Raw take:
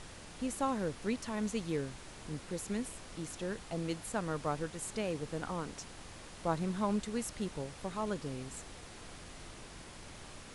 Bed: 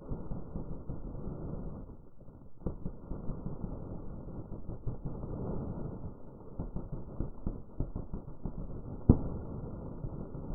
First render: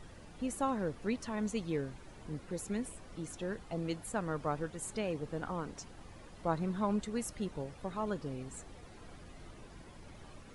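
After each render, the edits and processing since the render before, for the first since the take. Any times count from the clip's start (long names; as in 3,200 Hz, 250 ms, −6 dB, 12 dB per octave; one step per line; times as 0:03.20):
broadband denoise 11 dB, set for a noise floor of −51 dBFS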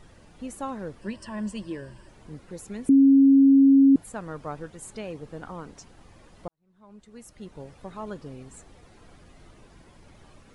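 0:01.01–0:02.09: EQ curve with evenly spaced ripples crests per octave 1.3, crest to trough 12 dB
0:02.89–0:03.96: beep over 273 Hz −12 dBFS
0:06.48–0:07.68: fade in quadratic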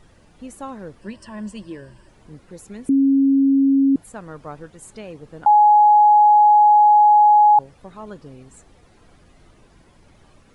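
0:05.46–0:07.59: beep over 838 Hz −8.5 dBFS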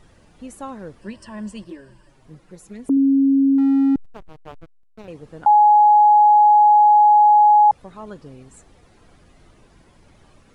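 0:01.64–0:02.97: flanger swept by the level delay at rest 8.7 ms, full sweep at −18.5 dBFS
0:03.58–0:05.08: slack as between gear wheels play −24.5 dBFS
0:07.08: stutter in place 0.21 s, 3 plays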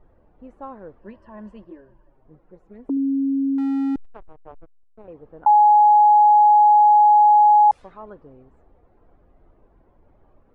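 low-pass that shuts in the quiet parts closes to 730 Hz, open at −12.5 dBFS
parametric band 150 Hz −10 dB 2.1 octaves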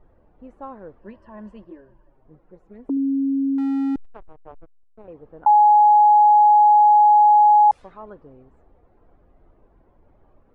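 no processing that can be heard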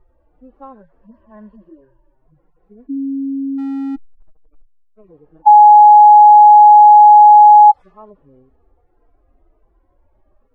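harmonic-percussive split with one part muted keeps harmonic
dynamic equaliser 820 Hz, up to +8 dB, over −28 dBFS, Q 2.1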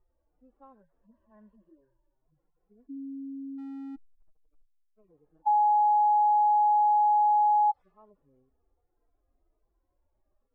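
level −17.5 dB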